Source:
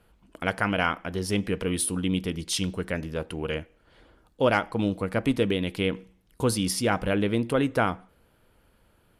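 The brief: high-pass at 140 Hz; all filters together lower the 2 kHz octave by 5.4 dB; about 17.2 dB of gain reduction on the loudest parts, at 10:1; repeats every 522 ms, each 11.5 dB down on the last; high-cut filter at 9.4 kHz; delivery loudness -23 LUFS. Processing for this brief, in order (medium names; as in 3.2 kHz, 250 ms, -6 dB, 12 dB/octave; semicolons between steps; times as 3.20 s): high-pass 140 Hz; low-pass 9.4 kHz; peaking EQ 2 kHz -8 dB; compression 10:1, threshold -37 dBFS; feedback delay 522 ms, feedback 27%, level -11.5 dB; trim +19 dB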